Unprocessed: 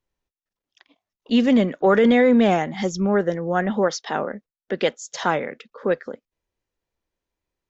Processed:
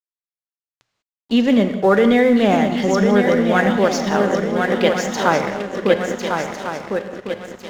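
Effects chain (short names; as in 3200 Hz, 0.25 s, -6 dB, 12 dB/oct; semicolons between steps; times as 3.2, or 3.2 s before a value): 3.18–3.77 bell 3800 Hz +10 dB 2.8 oct; swung echo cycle 1.402 s, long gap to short 3:1, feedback 39%, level -6 dB; in parallel at -1.5 dB: vocal rider within 4 dB; on the sum: crossover distortion -33.5 dBFS; bell 120 Hz +10 dB 0.21 oct; non-linear reverb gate 0.22 s flat, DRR 8.5 dB; gain -2 dB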